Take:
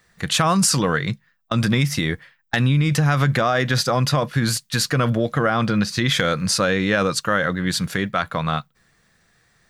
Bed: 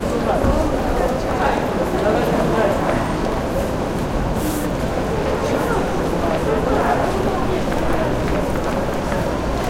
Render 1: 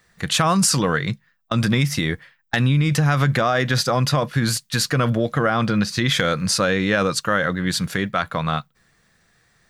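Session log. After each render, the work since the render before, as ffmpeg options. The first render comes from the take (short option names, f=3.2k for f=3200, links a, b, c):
-af anull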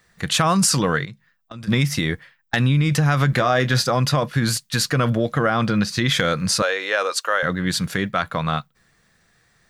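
-filter_complex "[0:a]asplit=3[a][b][c];[a]afade=t=out:st=1.04:d=0.02[d];[b]acompressor=threshold=-36dB:ratio=4:attack=3.2:release=140:knee=1:detection=peak,afade=t=in:st=1.04:d=0.02,afade=t=out:st=1.67:d=0.02[e];[c]afade=t=in:st=1.67:d=0.02[f];[d][e][f]amix=inputs=3:normalize=0,asettb=1/sr,asplit=3[g][h][i];[g]atrim=end=3.304[j];[h]atrim=start=3.3:end=3.86,asetpts=PTS-STARTPTS,afade=t=in:d=0.004:c=qsin,afade=t=out:st=0.556:d=0.004:c=qsin,asplit=2[k][l];[l]adelay=24,volume=-10dB[m];[k][m]amix=inputs=2:normalize=0,atrim=end_sample=24696[n];[i]atrim=start=3.856[o];[j][n]acrossfade=d=0.004:c1=hsin:c2=qsin[p];[p][o]acrossfade=d=0.004:c1=qsin:c2=hsin,asettb=1/sr,asplit=3[q][r][s];[q]atrim=end=6.624[t];[r]atrim=start=6.62:end=7.43,asetpts=PTS-STARTPTS,afade=t=in:d=0.004:c=qsin,afade=t=out:st=0.806:d=0.004:c=qsin,highpass=f=460:w=0.5412,highpass=f=460:w=1.3066[u];[s]atrim=start=7.426[v];[t][u]acrossfade=d=0.004:c1=hsin:c2=qsin[w];[w][v]acrossfade=d=0.004:c1=qsin:c2=hsin"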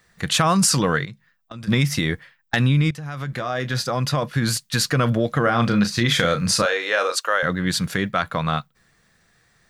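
-filter_complex "[0:a]asettb=1/sr,asplit=3[a][b][c];[a]atrim=end=5.434[d];[b]atrim=start=5.43:end=7.16,asetpts=PTS-STARTPTS,afade=t=in:d=0.004:c=qsin,afade=t=out:st=1.726:d=0.004:c=qsin,asplit=2[e][f];[f]adelay=34,volume=-8.5dB[g];[e][g]amix=inputs=2:normalize=0,atrim=end_sample=76293[h];[c]atrim=start=7.156[i];[d][h]acrossfade=d=0.004:c1=hsin:c2=qsin[j];[j][i]acrossfade=d=0.004:c1=qsin:c2=hsin,asplit=2[k][l];[k]atrim=end=2.91,asetpts=PTS-STARTPTS,afade=t=out:st=2.906:d=0.004:c=hsin:silence=0.11885[m];[l]atrim=start=2.91,asetpts=PTS-STARTPTS,afade=t=in:d=1.76:silence=0.11885[n];[m][n]concat=n=2:v=0:a=1"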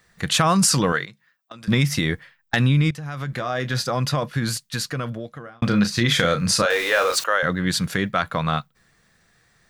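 -filter_complex "[0:a]asettb=1/sr,asplit=3[a][b][c];[a]atrim=end=0.924[d];[b]atrim=start=0.92:end=1.68,asetpts=PTS-STARTPTS,afade=t=in:d=0.004:c=qsin,afade=t=out:st=0.756:d=0.004:c=qsin,highpass=f=420:p=1[e];[c]atrim=start=1.676[f];[d][e]acrossfade=d=0.004:c1=hsin:c2=qsin[g];[g][f]acrossfade=d=0.004:c1=qsin:c2=hsin,asettb=1/sr,asplit=3[h][i][j];[h]atrim=end=6.704[k];[i]atrim=start=6.7:end=7.24,asetpts=PTS-STARTPTS,afade=t=in:d=0.004:c=qsin,afade=t=out:st=0.536:d=0.004:c=qsin,aeval=exprs='val(0)+0.5*0.0473*sgn(val(0))':c=same[l];[j]atrim=start=7.236[m];[k][l]acrossfade=d=0.004:c1=hsin:c2=qsin[n];[n][m]acrossfade=d=0.004:c1=qsin:c2=hsin,asplit=2[o][p];[o]atrim=end=5.62,asetpts=PTS-STARTPTS,afade=t=out:st=4.02:d=1.6[q];[p]atrim=start=5.62,asetpts=PTS-STARTPTS,afade=t=in:d=0.004:c=hsin[r];[q][r]concat=n=2:v=0:a=1"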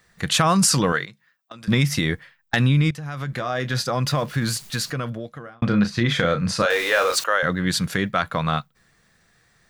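-filter_complex "[0:a]asettb=1/sr,asplit=3[a][b][c];[a]atrim=end=4.064[d];[b]atrim=start=4.06:end=4.91,asetpts=PTS-STARTPTS,afade=t=in:d=0.004:c=qsin,afade=t=out:st=0.846:d=0.004:c=qsin,aeval=exprs='val(0)+0.5*0.0126*sgn(val(0))':c=same[e];[c]atrim=start=4.906[f];[d][e]acrossfade=d=0.004:c1=hsin:c2=qsin[g];[g][f]acrossfade=d=0.004:c1=qsin:c2=hsin,asplit=3[h][i][j];[h]afade=t=out:st=5.54:d=0.02[k];[i]lowpass=f=2.3k:p=1,afade=t=in:st=5.54:d=0.02,afade=t=out:st=6.6:d=0.02[l];[j]afade=t=in:st=6.6:d=0.02[m];[k][l][m]amix=inputs=3:normalize=0"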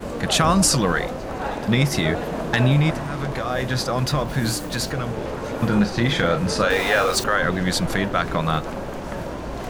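-filter_complex "[1:a]volume=-9.5dB[a];[0:a][a]amix=inputs=2:normalize=0"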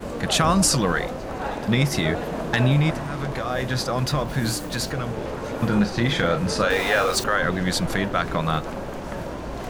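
-af "volume=-1.5dB"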